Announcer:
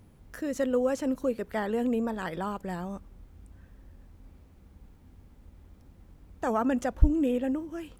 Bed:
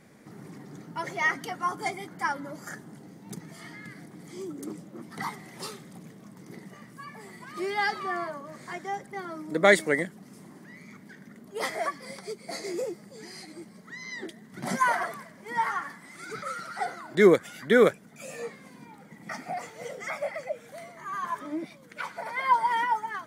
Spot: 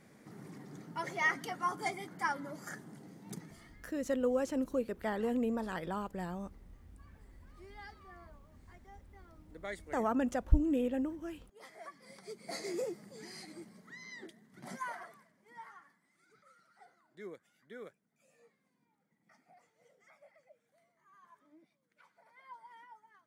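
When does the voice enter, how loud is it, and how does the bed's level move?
3.50 s, -5.0 dB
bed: 3.41 s -5 dB
3.89 s -24 dB
11.62 s -24 dB
12.52 s -5 dB
13.52 s -5 dB
16.32 s -29.5 dB

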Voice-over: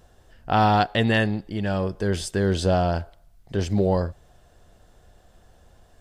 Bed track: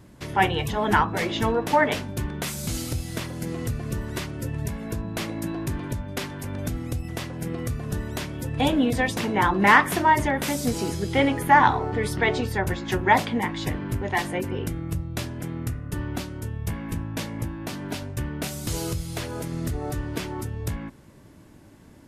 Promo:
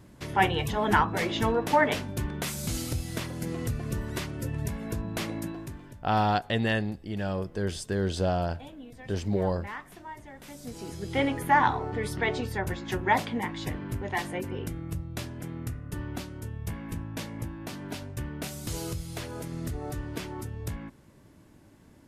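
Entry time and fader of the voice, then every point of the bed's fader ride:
5.55 s, -6.0 dB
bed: 5.36 s -2.5 dB
6.17 s -24 dB
10.25 s -24 dB
11.18 s -5.5 dB

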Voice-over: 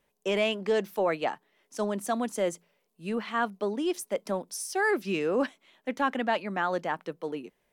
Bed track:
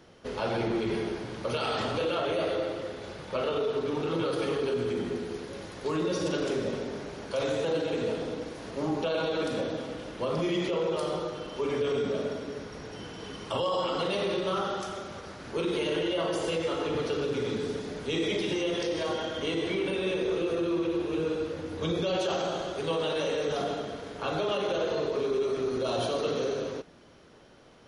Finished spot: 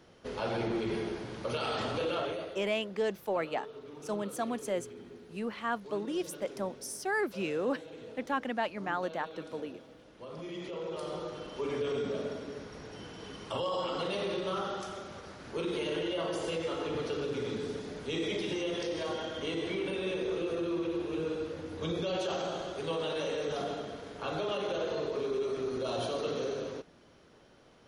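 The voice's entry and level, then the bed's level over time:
2.30 s, -5.0 dB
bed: 2.22 s -3.5 dB
2.60 s -17 dB
10.07 s -17 dB
11.37 s -4.5 dB

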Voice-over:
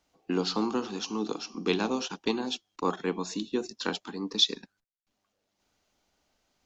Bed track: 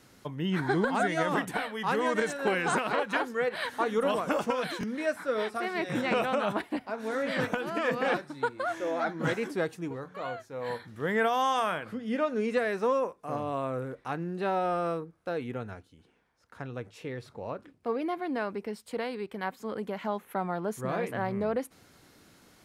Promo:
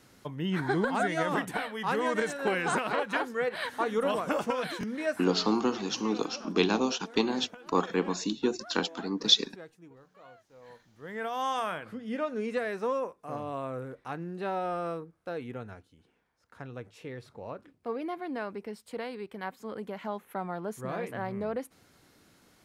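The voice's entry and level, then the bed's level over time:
4.90 s, +2.0 dB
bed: 5.22 s -1 dB
5.49 s -17 dB
10.88 s -17 dB
11.47 s -3.5 dB

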